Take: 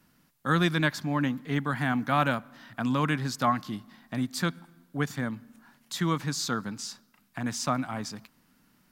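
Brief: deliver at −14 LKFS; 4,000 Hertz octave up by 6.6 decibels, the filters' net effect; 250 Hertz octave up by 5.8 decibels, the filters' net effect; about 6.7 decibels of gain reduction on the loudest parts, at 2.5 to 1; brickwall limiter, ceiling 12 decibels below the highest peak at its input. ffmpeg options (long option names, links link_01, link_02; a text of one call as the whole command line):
ffmpeg -i in.wav -af "equalizer=frequency=250:width_type=o:gain=7,equalizer=frequency=4000:width_type=o:gain=8,acompressor=threshold=-28dB:ratio=2.5,volume=22.5dB,alimiter=limit=-4.5dB:level=0:latency=1" out.wav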